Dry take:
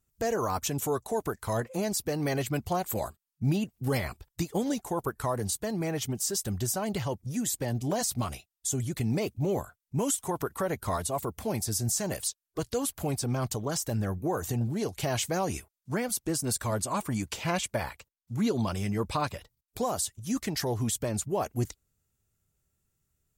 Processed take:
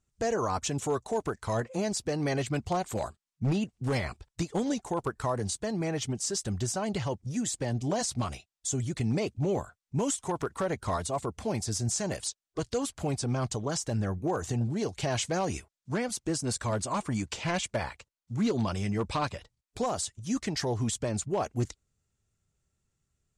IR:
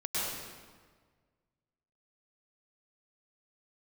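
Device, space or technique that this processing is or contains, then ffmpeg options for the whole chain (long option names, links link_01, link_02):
synthesiser wavefolder: -af "aeval=exprs='0.0891*(abs(mod(val(0)/0.0891+3,4)-2)-1)':channel_layout=same,lowpass=frequency=8300:width=0.5412,lowpass=frequency=8300:width=1.3066"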